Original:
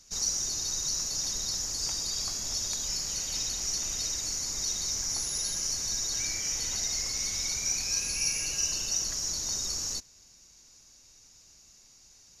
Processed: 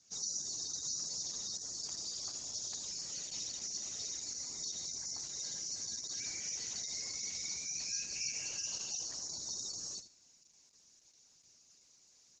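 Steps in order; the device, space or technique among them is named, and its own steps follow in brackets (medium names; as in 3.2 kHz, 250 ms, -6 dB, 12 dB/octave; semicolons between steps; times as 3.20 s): feedback delay 77 ms, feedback 15%, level -11.5 dB; 8.34–9.38 s: dynamic bell 840 Hz, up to +4 dB, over -59 dBFS, Q 1.7; noise-suppressed video call (high-pass 120 Hz 12 dB/octave; spectral gate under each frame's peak -25 dB strong; trim -8 dB; Opus 12 kbps 48 kHz)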